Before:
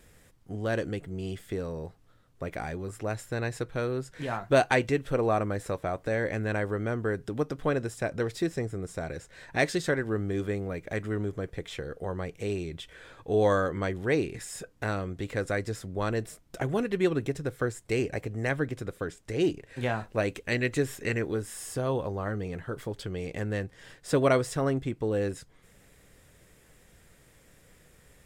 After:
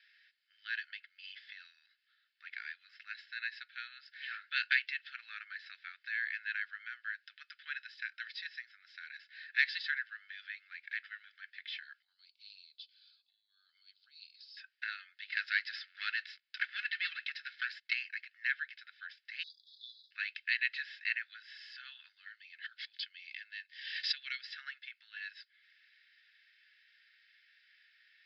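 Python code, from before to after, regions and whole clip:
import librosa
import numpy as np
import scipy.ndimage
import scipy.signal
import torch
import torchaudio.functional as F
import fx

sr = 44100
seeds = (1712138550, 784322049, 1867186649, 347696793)

y = fx.chain(x, sr, fx.highpass(hz=1100.0, slope=24),
    fx.band_squash(depth_pct=40), at=(1.23, 1.76))
y = fx.chain(y, sr, fx.double_bandpass(hz=1800.0, octaves=2.6),
    fx.over_compress(threshold_db=-47.0, ratio=-1.0), at=(12.02, 14.57))
y = fx.chain(y, sr, fx.lowpass(hz=11000.0, slope=12),
    fx.leveller(passes=2), at=(15.32, 17.93))
y = fx.chain(y, sr, fx.brickwall_bandstop(low_hz=280.0, high_hz=3300.0),
    fx.high_shelf(hz=9800.0, db=-3.5),
    fx.sustainer(db_per_s=74.0), at=(19.43, 20.11))
y = fx.chain(y, sr, fx.peak_eq(hz=1300.0, db=-13.0, octaves=1.1),
    fx.pre_swell(db_per_s=64.0), at=(22.13, 24.44))
y = scipy.signal.sosfilt(scipy.signal.cheby1(5, 1.0, [1500.0, 5000.0], 'bandpass', fs=sr, output='sos'), y)
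y = y + 0.42 * np.pad(y, (int(2.3 * sr / 1000.0), 0))[:len(y)]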